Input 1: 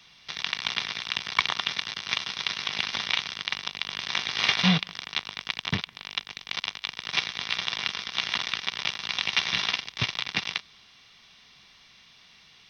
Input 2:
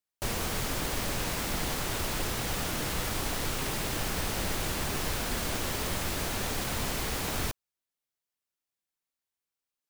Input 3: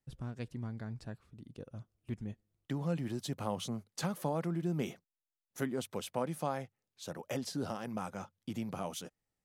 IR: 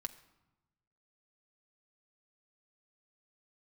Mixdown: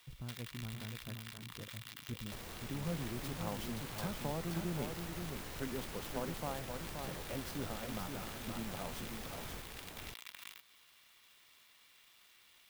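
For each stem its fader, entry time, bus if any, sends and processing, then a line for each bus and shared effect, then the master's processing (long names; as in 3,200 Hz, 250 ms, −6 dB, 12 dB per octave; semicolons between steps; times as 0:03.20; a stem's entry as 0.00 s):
−12.0 dB, 0.00 s, bus A, no send, no echo send, inverse Chebyshev high-pass filter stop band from 460 Hz, stop band 40 dB; compressor whose output falls as the input rises −34 dBFS, ratio −1
−5.5 dB, 2.10 s, bus A, no send, echo send −12.5 dB, no processing
−6.5 dB, 0.00 s, no bus, no send, echo send −5.5 dB, low-shelf EQ 69 Hz +10.5 dB
bus A: 0.0 dB, downward compressor 5 to 1, threshold −45 dBFS, peak gain reduction 12 dB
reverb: not used
echo: single-tap delay 526 ms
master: converter with an unsteady clock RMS 0.035 ms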